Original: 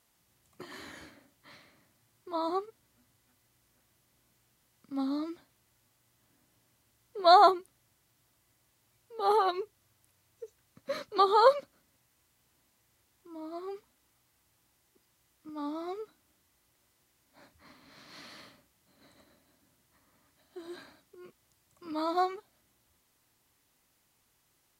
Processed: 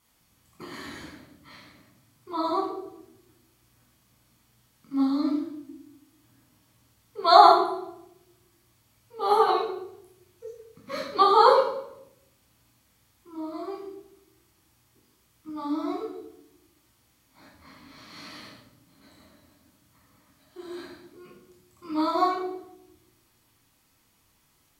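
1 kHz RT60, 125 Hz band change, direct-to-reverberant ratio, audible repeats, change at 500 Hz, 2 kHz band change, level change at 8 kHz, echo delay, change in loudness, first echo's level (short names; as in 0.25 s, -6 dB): 0.70 s, n/a, -3.5 dB, none, +4.5 dB, +4.5 dB, n/a, none, +5.0 dB, none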